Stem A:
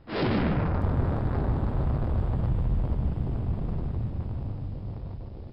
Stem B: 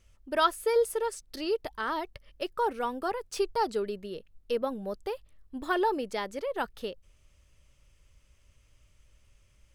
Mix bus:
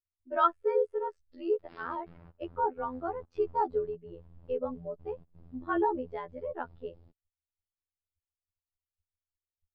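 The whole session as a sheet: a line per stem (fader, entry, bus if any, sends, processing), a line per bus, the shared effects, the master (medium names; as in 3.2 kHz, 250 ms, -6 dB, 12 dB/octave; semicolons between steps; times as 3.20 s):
-16.5 dB, 1.60 s, no send, compression 6:1, threshold -32 dBFS, peak gain reduction 11 dB; trance gate "xxx.xx.xx.x" 128 bpm -24 dB; upward compressor, threshold -51 dBFS
+3.0 dB, 0.00 s, no send, gate -55 dBFS, range -17 dB; low-pass 2.7 kHz 12 dB/octave; spectral contrast expander 1.5:1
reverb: none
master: robot voice 84.6 Hz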